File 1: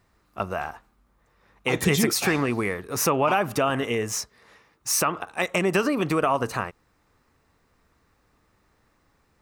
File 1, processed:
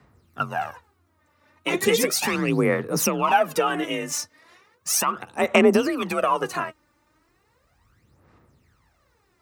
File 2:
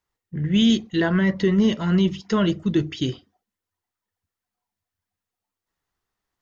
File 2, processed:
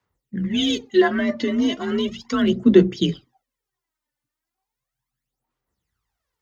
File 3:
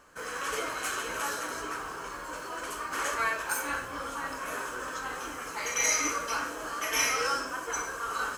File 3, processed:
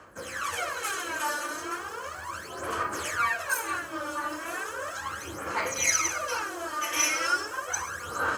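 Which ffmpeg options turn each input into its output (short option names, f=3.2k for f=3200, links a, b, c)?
-af "afreqshift=39,aphaser=in_gain=1:out_gain=1:delay=3.4:decay=0.69:speed=0.36:type=sinusoidal,volume=-1.5dB"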